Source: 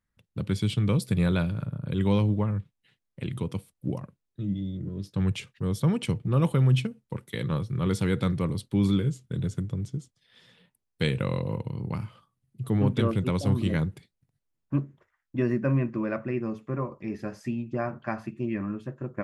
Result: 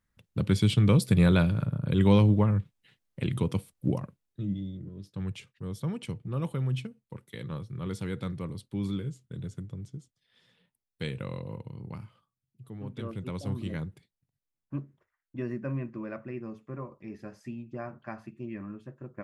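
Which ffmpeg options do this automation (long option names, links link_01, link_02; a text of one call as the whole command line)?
ffmpeg -i in.wav -af "volume=12.5dB,afade=type=out:start_time=3.87:duration=1.04:silence=0.266073,afade=type=out:start_time=11.9:duration=0.87:silence=0.334965,afade=type=in:start_time=12.77:duration=0.63:silence=0.334965" out.wav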